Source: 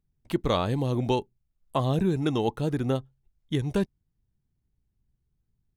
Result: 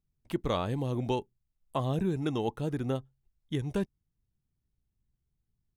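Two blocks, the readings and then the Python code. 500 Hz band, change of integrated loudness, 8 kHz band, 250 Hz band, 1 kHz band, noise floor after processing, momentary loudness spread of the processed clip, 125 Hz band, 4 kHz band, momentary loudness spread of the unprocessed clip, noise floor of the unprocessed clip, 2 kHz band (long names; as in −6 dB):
−5.0 dB, −5.0 dB, −5.0 dB, −5.0 dB, −5.0 dB, −83 dBFS, 7 LU, −5.0 dB, −6.0 dB, 7 LU, −78 dBFS, −5.0 dB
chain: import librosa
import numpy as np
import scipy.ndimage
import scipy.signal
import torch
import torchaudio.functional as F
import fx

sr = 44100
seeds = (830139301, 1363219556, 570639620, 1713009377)

y = fx.dynamic_eq(x, sr, hz=4200.0, q=5.5, threshold_db=-58.0, ratio=4.0, max_db=-7)
y = y * librosa.db_to_amplitude(-5.0)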